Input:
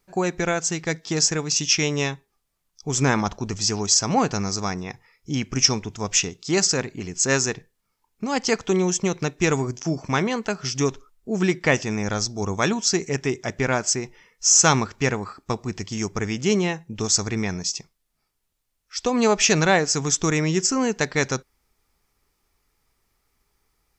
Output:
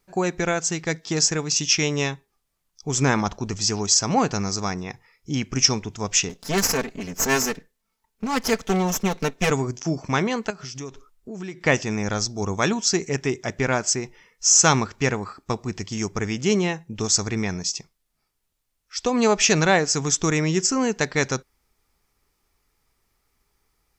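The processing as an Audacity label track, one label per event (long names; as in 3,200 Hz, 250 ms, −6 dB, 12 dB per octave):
6.290000	9.510000	lower of the sound and its delayed copy delay 4.5 ms
10.500000	11.660000	downward compressor 3 to 1, threshold −34 dBFS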